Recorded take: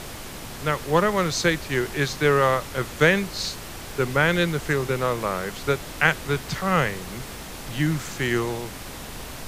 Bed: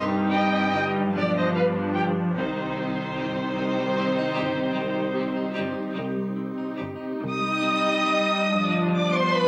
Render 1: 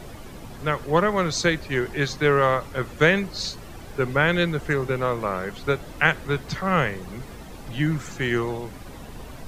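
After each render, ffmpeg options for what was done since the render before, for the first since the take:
-af "afftdn=nr=11:nf=-37"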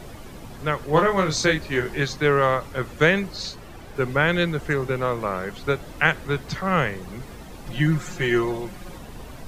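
-filter_complex "[0:a]asettb=1/sr,asplit=3[a][b][c];[a]atrim=end=0.904[d];[b]atrim=start=0.9:end=2.02,asetpts=PTS-STARTPTS,afade=t=in:d=0.004:c=qsin,afade=t=out:st=1.116:d=0.004:c=qsin,asplit=2[e][f];[f]adelay=26,volume=-4dB[g];[e][g]amix=inputs=2:normalize=0,atrim=end_sample=49392[h];[c]atrim=start=2.016[i];[d][h]acrossfade=d=0.004:c1=hsin:c2=qsin[j];[j][i]acrossfade=d=0.004:c1=qsin:c2=hsin,asettb=1/sr,asplit=3[k][l][m];[k]atrim=end=3.364[n];[l]atrim=start=3.36:end=3.96,asetpts=PTS-STARTPTS,afade=t=in:d=0.004:c=qsin,afade=t=out:st=0.596:d=0.004:c=qsin,bass=f=250:g=-2,treble=f=4k:g=-4[o];[m]atrim=start=3.956[p];[n][o]acrossfade=d=0.004:c1=hsin:c2=qsin[q];[q][p]acrossfade=d=0.004:c1=qsin:c2=hsin,asettb=1/sr,asplit=3[r][s][t];[r]atrim=end=7.654[u];[s]atrim=start=7.65:end=8.98,asetpts=PTS-STARTPTS,afade=t=in:d=0.004:c=qsin,afade=t=out:st=1.326:d=0.004:c=qsin,aecho=1:1:5.6:0.69,atrim=end_sample=58653[v];[t]atrim=start=8.976[w];[u][v]acrossfade=d=0.004:c1=hsin:c2=qsin[x];[x][w]acrossfade=d=0.004:c1=qsin:c2=hsin"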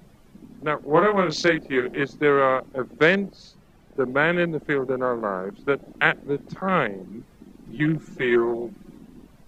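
-af "afwtdn=0.0355,lowshelf=f=150:t=q:w=1.5:g=-13"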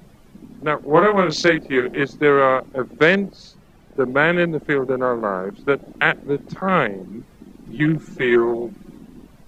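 -af "volume=4dB,alimiter=limit=-2dB:level=0:latency=1"

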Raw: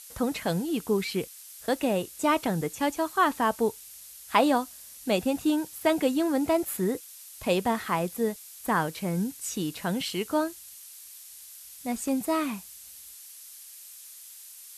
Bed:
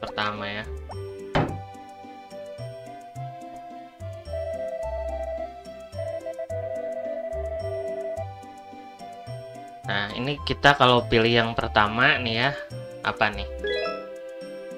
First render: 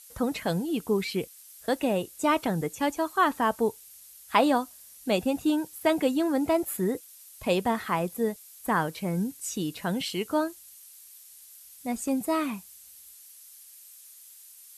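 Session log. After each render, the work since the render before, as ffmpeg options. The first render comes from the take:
-af "afftdn=nr=6:nf=-47"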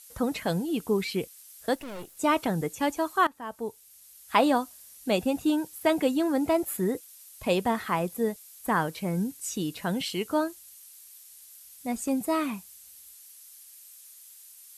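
-filter_complex "[0:a]asettb=1/sr,asplit=3[a][b][c];[a]atrim=end=1.754[d];[b]atrim=start=1.75:end=2.17,asetpts=PTS-STARTPTS,afade=t=in:d=0.004:c=qsin,afade=t=out:st=0.416:d=0.004:c=qsin,aeval=exprs='(tanh(70.8*val(0)+0.75)-tanh(0.75))/70.8':c=same[e];[c]atrim=start=2.166[f];[d][e]acrossfade=d=0.004:c1=hsin:c2=qsin[g];[g][f]acrossfade=d=0.004:c1=qsin:c2=hsin,asplit=2[h][i];[h]atrim=end=3.27,asetpts=PTS-STARTPTS,afade=t=out:st=3.266:d=0.004:c=hsin:silence=0.0841395[j];[i]atrim=start=3.27,asetpts=PTS-STARTPTS,afade=t=in:d=1.12:silence=0.0841395[k];[j][k]concat=n=2:v=0:a=1"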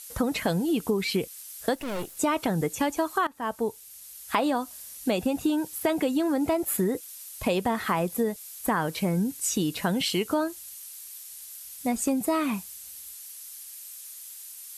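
-filter_complex "[0:a]asplit=2[a][b];[b]alimiter=limit=-17.5dB:level=0:latency=1,volume=2.5dB[c];[a][c]amix=inputs=2:normalize=0,acompressor=threshold=-22dB:ratio=6"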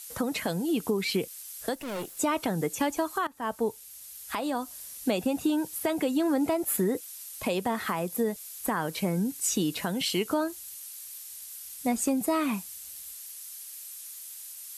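-filter_complex "[0:a]acrossover=split=130|4800[a][b][c];[a]acompressor=threshold=-53dB:ratio=6[d];[b]alimiter=limit=-17dB:level=0:latency=1:release=447[e];[d][e][c]amix=inputs=3:normalize=0"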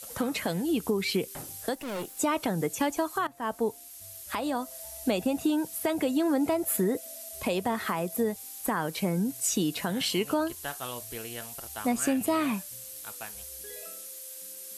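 -filter_complex "[1:a]volume=-21dB[a];[0:a][a]amix=inputs=2:normalize=0"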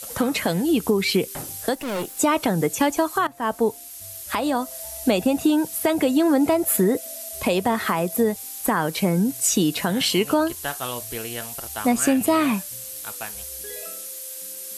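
-af "volume=7.5dB"

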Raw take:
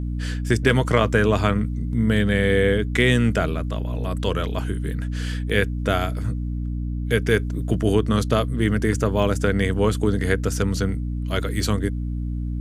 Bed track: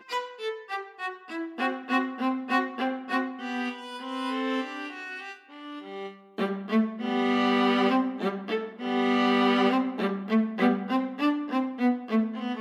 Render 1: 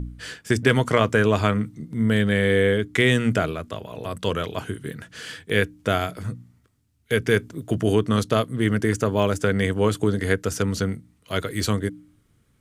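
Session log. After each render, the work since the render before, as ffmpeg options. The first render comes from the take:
-af "bandreject=f=60:t=h:w=4,bandreject=f=120:t=h:w=4,bandreject=f=180:t=h:w=4,bandreject=f=240:t=h:w=4,bandreject=f=300:t=h:w=4"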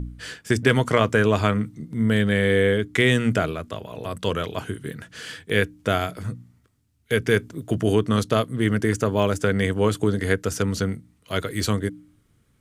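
-af anull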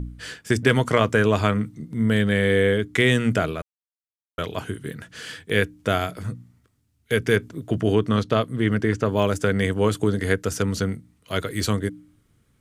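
-filter_complex "[0:a]asettb=1/sr,asplit=3[a][b][c];[a]atrim=end=7.364[d];[b]atrim=start=7.36:end=9.09,asetpts=PTS-STARTPTS,afade=t=in:d=0.004:c=qsin,afade=t=out:st=1.726:d=0.004:c=qsin,acrossover=split=4900[e][f];[f]acompressor=threshold=-53dB:ratio=4:attack=1:release=60[g];[e][g]amix=inputs=2:normalize=0[h];[c]atrim=start=9.086[i];[d][h]acrossfade=d=0.004:c1=hsin:c2=qsin[j];[j][i]acrossfade=d=0.004:c1=qsin:c2=hsin,asplit=3[k][l][m];[k]atrim=end=3.62,asetpts=PTS-STARTPTS,afade=t=out:st=3.616:d=0.004:c=hsin[n];[l]atrim=start=3.62:end=4.38,asetpts=PTS-STARTPTS,volume=0[o];[m]atrim=start=4.38,asetpts=PTS-STARTPTS,afade=t=in:d=0.004:c=hsin[p];[n][o][p]concat=n=3:v=0:a=1"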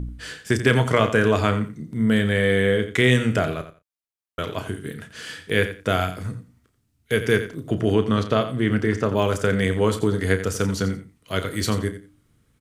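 -filter_complex "[0:a]asplit=2[a][b];[b]adelay=32,volume=-11dB[c];[a][c]amix=inputs=2:normalize=0,aecho=1:1:87|174:0.251|0.0477"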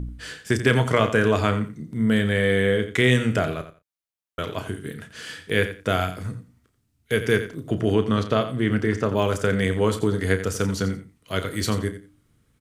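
-af "volume=-1dB"

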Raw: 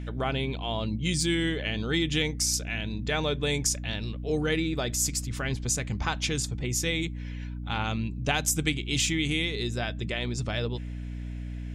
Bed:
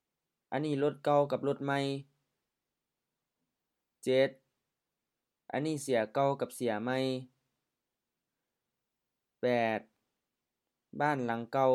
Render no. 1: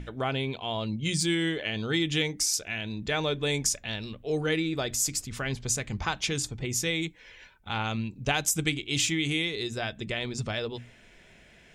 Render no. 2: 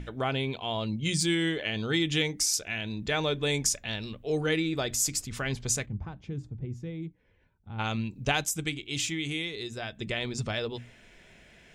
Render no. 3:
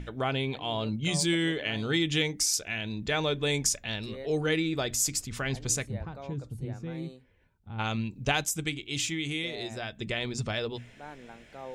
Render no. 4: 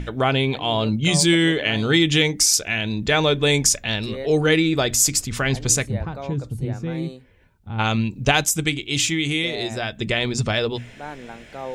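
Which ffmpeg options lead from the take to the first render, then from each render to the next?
-af "bandreject=f=60:t=h:w=6,bandreject=f=120:t=h:w=6,bandreject=f=180:t=h:w=6,bandreject=f=240:t=h:w=6,bandreject=f=300:t=h:w=6"
-filter_complex "[0:a]asplit=3[a][b][c];[a]afade=t=out:st=5.85:d=0.02[d];[b]bandpass=f=110:t=q:w=0.72,afade=t=in:st=5.85:d=0.02,afade=t=out:st=7.78:d=0.02[e];[c]afade=t=in:st=7.78:d=0.02[f];[d][e][f]amix=inputs=3:normalize=0,asplit=3[g][h][i];[g]atrim=end=8.442[j];[h]atrim=start=8.438:end=10.002,asetpts=PTS-STARTPTS,volume=-4.5dB[k];[i]atrim=start=9.998[l];[j][k]acrossfade=d=0.004:c1=hsin:c2=hsin[m];[m][l]acrossfade=d=0.004:c1=hsin:c2=hsin"
-filter_complex "[1:a]volume=-15dB[a];[0:a][a]amix=inputs=2:normalize=0"
-af "volume=10dB,alimiter=limit=-3dB:level=0:latency=1"

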